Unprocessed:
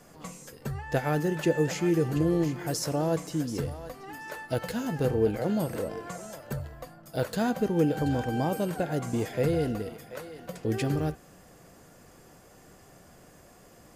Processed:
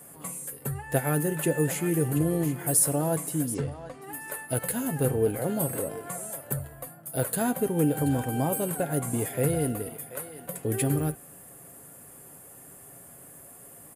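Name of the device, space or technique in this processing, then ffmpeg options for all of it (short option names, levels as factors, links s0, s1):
budget condenser microphone: -filter_complex "[0:a]asettb=1/sr,asplit=3[s0][s1][s2];[s0]atrim=end=3.544[s3];[s1]atrim=start=3.54:end=4.02,asetpts=PTS-STARTPTS,afade=t=in:d=0.004:c=qsin,afade=t=out:st=0.476:d=0.004:c=qsin,lowpass=f=6200:w=0.5412,lowpass=f=6200:w=1.3066[s4];[s2]atrim=start=4.016[s5];[s3][s4]acrossfade=d=0.004:c1=hsin:c2=qsin[s6];[s6][s5]acrossfade=d=0.004:c1=qsin:c2=hsin,highpass=61,highshelf=f=7500:t=q:w=3:g=12,aecho=1:1:7.3:0.35"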